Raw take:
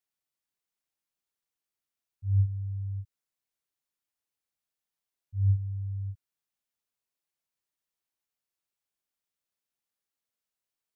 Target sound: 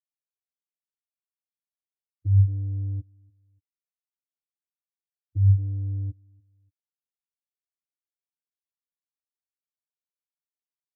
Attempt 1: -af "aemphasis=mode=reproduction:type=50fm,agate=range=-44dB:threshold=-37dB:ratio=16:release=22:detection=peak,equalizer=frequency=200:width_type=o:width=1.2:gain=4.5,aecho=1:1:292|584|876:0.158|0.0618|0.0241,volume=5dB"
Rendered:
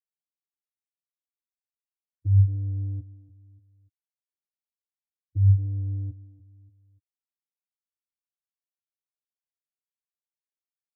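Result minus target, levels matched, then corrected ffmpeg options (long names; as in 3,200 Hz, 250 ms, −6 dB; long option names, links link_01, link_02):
echo-to-direct +11.5 dB
-af "aemphasis=mode=reproduction:type=50fm,agate=range=-44dB:threshold=-37dB:ratio=16:release=22:detection=peak,equalizer=frequency=200:width_type=o:width=1.2:gain=4.5,aecho=1:1:292|584:0.0422|0.0164,volume=5dB"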